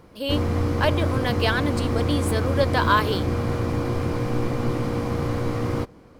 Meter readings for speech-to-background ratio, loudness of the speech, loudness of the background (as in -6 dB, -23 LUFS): -0.5 dB, -25.5 LUFS, -25.0 LUFS